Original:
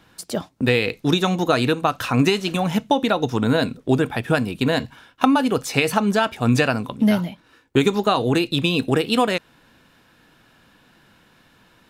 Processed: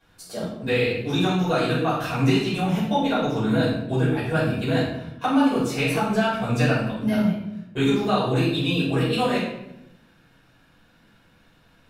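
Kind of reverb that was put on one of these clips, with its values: shoebox room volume 240 m³, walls mixed, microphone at 5.2 m; gain -17.5 dB

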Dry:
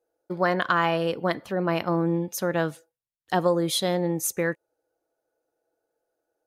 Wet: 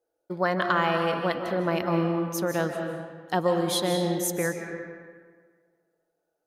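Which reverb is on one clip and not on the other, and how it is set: digital reverb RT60 1.7 s, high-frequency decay 0.65×, pre-delay 0.115 s, DRR 4 dB; gain -2 dB

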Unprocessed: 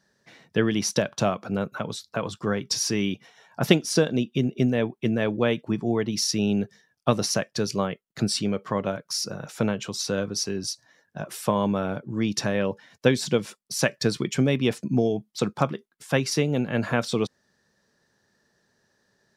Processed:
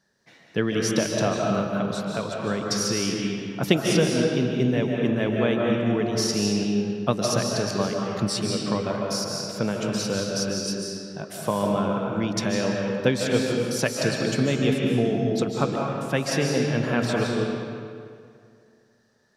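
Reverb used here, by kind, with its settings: digital reverb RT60 2.3 s, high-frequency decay 0.7×, pre-delay 0.11 s, DRR -1 dB; gain -2 dB

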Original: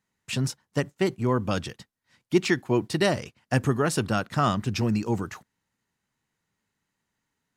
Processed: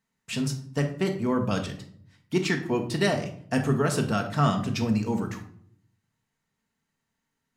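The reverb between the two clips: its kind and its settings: shoebox room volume 860 m³, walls furnished, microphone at 1.6 m; gain -2.5 dB

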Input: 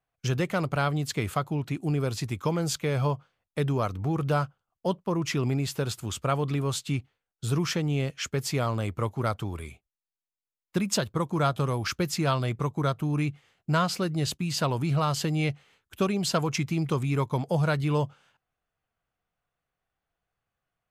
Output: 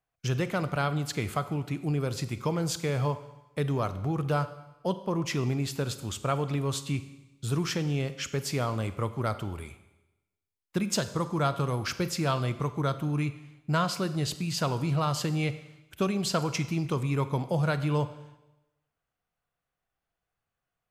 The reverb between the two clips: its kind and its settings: Schroeder reverb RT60 0.98 s, combs from 32 ms, DRR 12 dB; gain -2 dB

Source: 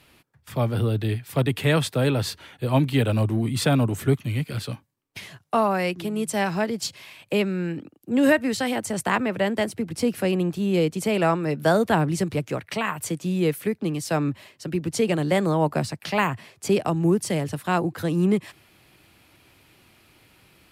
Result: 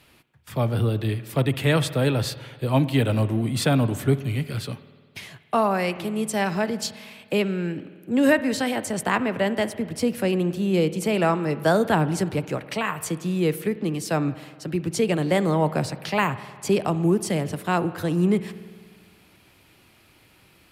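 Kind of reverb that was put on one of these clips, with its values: spring tank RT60 1.7 s, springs 51 ms, chirp 35 ms, DRR 14 dB

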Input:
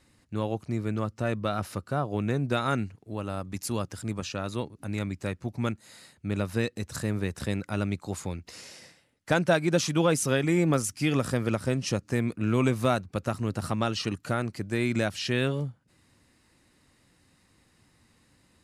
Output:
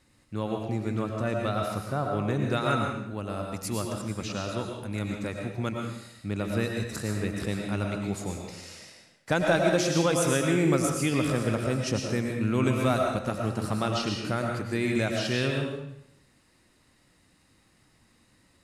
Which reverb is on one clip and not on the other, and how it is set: digital reverb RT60 0.78 s, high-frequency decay 0.95×, pre-delay 70 ms, DRR 1 dB; gain -1.5 dB

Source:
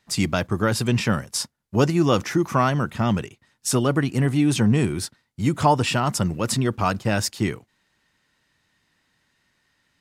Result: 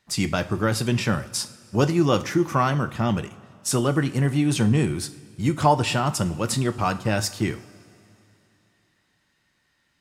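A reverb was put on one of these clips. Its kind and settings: two-slope reverb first 0.4 s, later 3 s, from -18 dB, DRR 9.5 dB; gain -1.5 dB

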